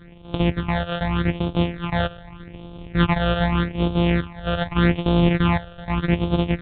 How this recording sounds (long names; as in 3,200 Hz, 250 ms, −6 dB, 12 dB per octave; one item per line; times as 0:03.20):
a buzz of ramps at a fixed pitch in blocks of 256 samples
phaser sweep stages 8, 0.83 Hz, lowest notch 280–1,900 Hz
mu-law